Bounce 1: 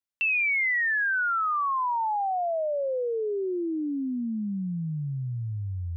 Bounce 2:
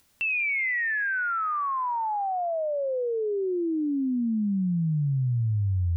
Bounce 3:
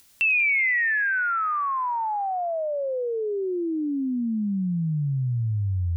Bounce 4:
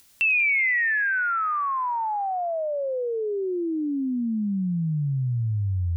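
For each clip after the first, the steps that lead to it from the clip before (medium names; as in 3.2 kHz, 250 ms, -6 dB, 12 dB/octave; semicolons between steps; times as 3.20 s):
bass shelf 280 Hz +10 dB; upward compressor, threshold -40 dBFS; feedback echo behind a high-pass 95 ms, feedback 75%, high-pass 2.8 kHz, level -14 dB; trim -2 dB
treble shelf 2.1 kHz +9.5 dB
spectral selection erased 3.77–4.40 s, 540–2900 Hz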